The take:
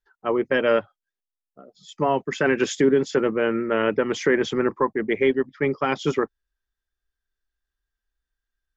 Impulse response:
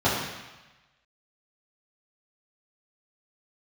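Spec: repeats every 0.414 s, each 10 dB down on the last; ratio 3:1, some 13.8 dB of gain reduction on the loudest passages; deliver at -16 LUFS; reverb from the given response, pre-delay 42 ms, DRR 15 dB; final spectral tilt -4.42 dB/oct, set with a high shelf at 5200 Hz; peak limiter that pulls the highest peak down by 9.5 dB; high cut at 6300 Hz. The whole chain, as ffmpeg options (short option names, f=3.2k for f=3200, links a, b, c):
-filter_complex "[0:a]lowpass=6.3k,highshelf=f=5.2k:g=4.5,acompressor=threshold=-34dB:ratio=3,alimiter=level_in=3.5dB:limit=-24dB:level=0:latency=1,volume=-3.5dB,aecho=1:1:414|828|1242|1656:0.316|0.101|0.0324|0.0104,asplit=2[a][b];[1:a]atrim=start_sample=2205,adelay=42[c];[b][c]afir=irnorm=-1:irlink=0,volume=-32dB[d];[a][d]amix=inputs=2:normalize=0,volume=22dB"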